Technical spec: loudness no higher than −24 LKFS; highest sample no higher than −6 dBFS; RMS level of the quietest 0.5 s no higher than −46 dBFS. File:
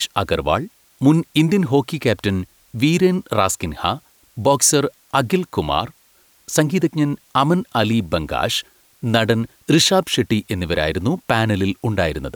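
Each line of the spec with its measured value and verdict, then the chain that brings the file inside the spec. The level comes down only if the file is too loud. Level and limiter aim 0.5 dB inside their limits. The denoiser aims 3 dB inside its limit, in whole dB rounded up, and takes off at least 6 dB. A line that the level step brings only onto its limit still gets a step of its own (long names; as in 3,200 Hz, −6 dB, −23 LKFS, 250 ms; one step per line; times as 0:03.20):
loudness −19.0 LKFS: out of spec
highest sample −3.5 dBFS: out of spec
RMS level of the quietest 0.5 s −55 dBFS: in spec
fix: level −5.5 dB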